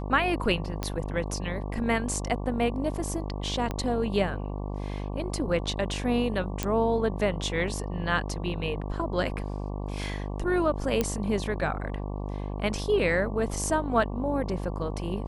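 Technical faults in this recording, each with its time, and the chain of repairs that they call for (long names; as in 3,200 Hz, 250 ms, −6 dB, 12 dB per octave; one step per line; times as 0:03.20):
mains buzz 50 Hz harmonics 23 −33 dBFS
0:00.83: click −15 dBFS
0:03.71: click −17 dBFS
0:06.63: click −11 dBFS
0:11.01: click −11 dBFS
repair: click removal
hum removal 50 Hz, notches 23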